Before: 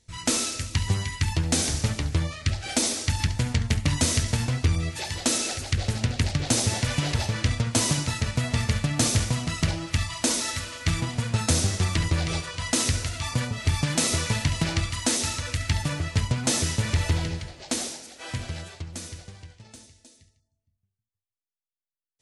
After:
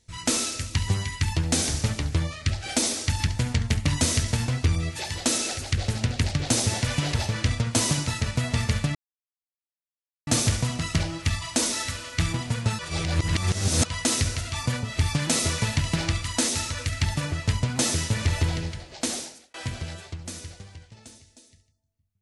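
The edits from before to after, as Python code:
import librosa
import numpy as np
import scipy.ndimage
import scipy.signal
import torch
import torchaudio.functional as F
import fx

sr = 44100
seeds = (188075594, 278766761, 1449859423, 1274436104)

y = fx.edit(x, sr, fx.insert_silence(at_s=8.95, length_s=1.32),
    fx.reverse_span(start_s=11.47, length_s=1.06),
    fx.fade_out_span(start_s=17.91, length_s=0.31), tone=tone)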